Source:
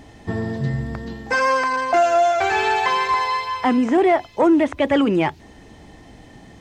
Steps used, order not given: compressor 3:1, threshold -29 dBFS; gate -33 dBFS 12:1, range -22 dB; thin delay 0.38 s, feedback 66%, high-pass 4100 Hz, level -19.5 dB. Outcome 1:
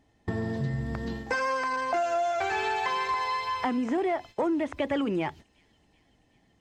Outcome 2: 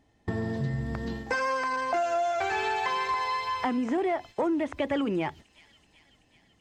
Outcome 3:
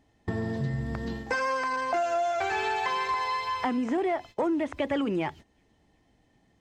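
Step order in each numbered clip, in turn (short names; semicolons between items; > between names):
gate > compressor > thin delay; gate > thin delay > compressor; thin delay > gate > compressor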